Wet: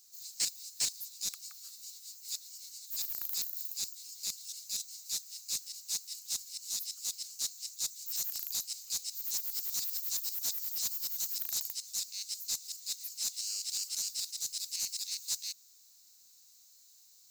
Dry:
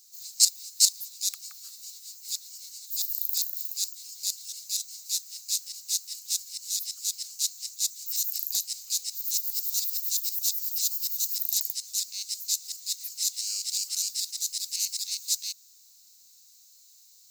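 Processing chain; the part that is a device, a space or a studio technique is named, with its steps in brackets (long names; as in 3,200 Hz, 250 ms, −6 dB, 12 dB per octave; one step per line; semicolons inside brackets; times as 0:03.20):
open-reel tape (soft clipping −21.5 dBFS, distortion −9 dB; parametric band 120 Hz +4 dB 1.16 octaves; white noise bed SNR 42 dB)
level −4.5 dB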